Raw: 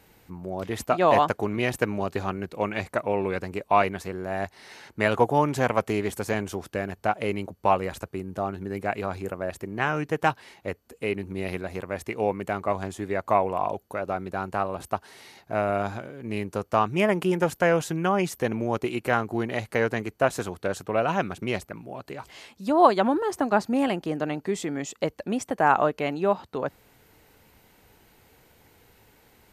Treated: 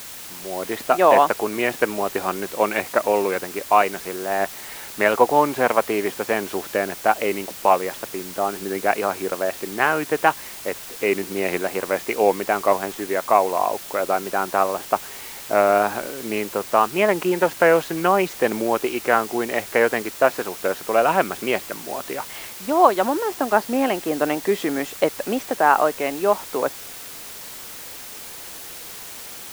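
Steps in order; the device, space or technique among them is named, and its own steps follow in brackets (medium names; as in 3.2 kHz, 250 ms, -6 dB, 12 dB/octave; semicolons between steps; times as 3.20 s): dictaphone (band-pass 310–3100 Hz; level rider; wow and flutter; white noise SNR 15 dB); trim -1 dB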